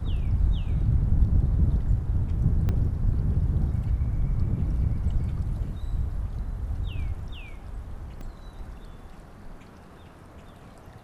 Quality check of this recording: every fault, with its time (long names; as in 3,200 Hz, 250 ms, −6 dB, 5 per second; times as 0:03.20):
0:02.69: click −17 dBFS
0:08.21: drop-out 2.2 ms